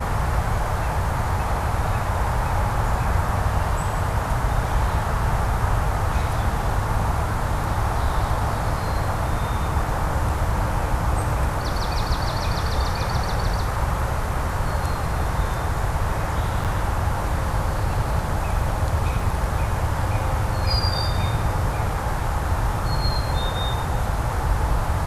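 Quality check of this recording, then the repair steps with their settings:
0:16.64–0:16.65: drop-out 7.5 ms
0:19.20: drop-out 2.3 ms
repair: repair the gap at 0:16.64, 7.5 ms
repair the gap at 0:19.20, 2.3 ms

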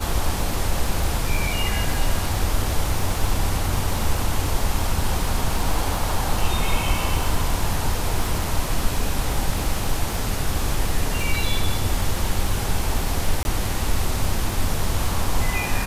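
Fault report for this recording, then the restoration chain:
surface crackle 31 per second −25 dBFS
0:13.43–0:13.45: drop-out 21 ms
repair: click removal
repair the gap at 0:13.43, 21 ms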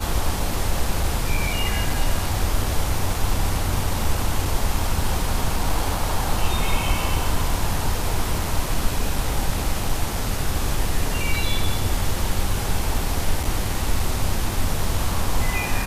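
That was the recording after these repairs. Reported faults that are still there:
none of them is left

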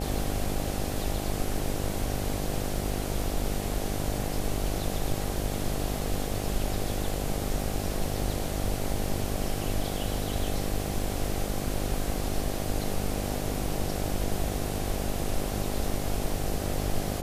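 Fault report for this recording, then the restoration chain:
mains buzz 50 Hz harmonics 16 −33 dBFS
0:03.24: drop-out 2.5 ms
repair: hum removal 50 Hz, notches 16
repair the gap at 0:03.24, 2.5 ms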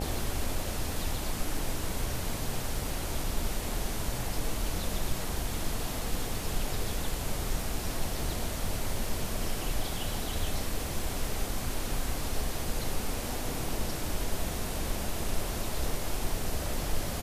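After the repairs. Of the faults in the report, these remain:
none of them is left

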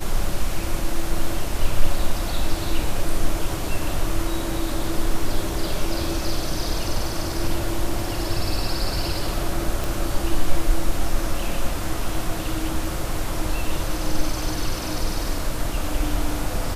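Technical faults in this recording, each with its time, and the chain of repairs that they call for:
0:09.84: click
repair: click removal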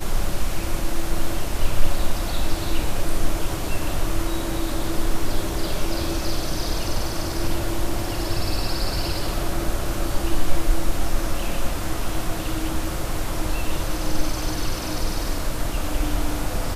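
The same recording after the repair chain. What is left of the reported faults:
none of them is left

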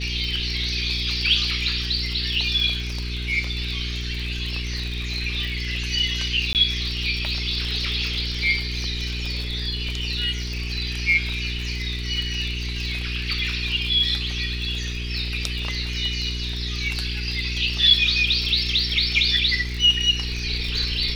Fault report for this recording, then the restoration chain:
surface crackle 44 per second −28 dBFS
mains hum 60 Hz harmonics 7 −29 dBFS
0:06.53–0:06.55: drop-out 18 ms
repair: click removal
hum removal 60 Hz, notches 7
repair the gap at 0:06.53, 18 ms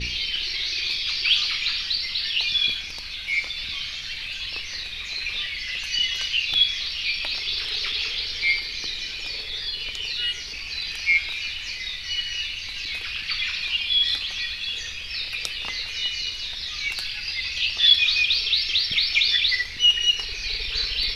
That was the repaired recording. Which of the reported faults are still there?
none of them is left

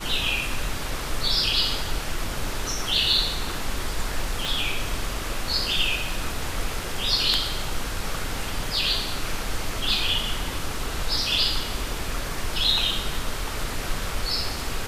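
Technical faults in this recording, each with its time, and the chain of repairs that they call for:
0:04.45: click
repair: click removal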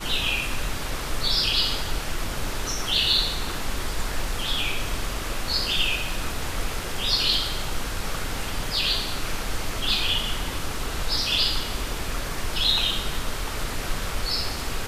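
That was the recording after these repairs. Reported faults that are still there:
0:04.45: click

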